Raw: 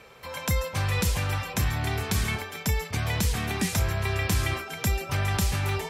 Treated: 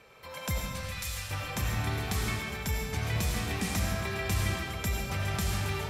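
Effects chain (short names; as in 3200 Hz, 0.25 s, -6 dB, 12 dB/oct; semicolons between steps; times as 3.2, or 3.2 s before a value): 0.58–1.31 passive tone stack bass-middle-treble 10-0-10; digital reverb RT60 1.7 s, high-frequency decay 0.8×, pre-delay 45 ms, DRR 0 dB; gain -6.5 dB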